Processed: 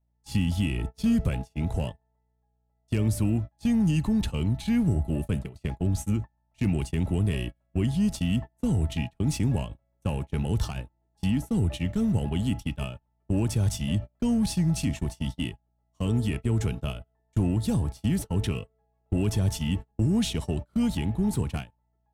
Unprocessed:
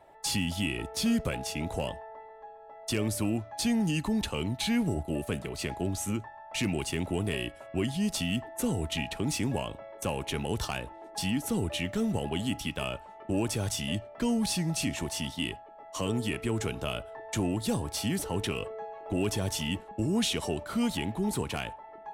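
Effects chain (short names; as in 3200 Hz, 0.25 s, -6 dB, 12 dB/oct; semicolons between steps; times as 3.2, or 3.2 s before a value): hum 60 Hz, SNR 18 dB; tone controls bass +13 dB, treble +1 dB; gate -26 dBFS, range -34 dB; in parallel at -10.5 dB: hard clip -31.5 dBFS, distortion -4 dB; on the sum: gain -4 dB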